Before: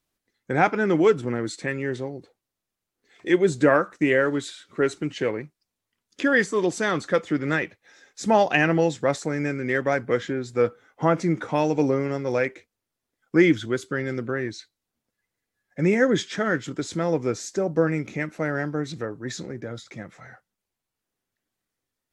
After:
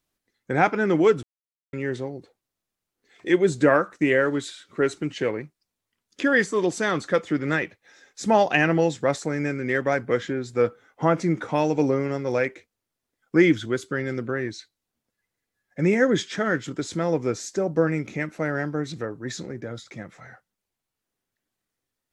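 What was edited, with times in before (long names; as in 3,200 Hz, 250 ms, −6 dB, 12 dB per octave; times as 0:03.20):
0:01.23–0:01.73: silence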